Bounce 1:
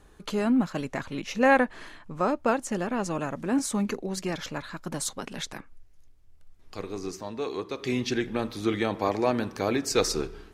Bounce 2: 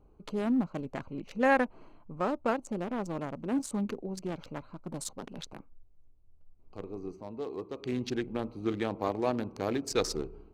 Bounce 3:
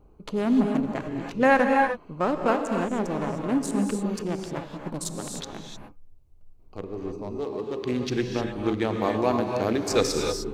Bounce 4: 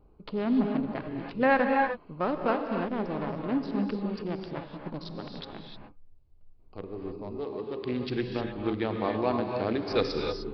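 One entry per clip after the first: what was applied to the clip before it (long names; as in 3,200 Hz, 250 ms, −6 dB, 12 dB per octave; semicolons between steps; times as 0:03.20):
adaptive Wiener filter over 25 samples; level −4.5 dB
reverb whose tail is shaped and stops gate 330 ms rising, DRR 2.5 dB; level +5.5 dB
downsampling to 11,025 Hz; level −4 dB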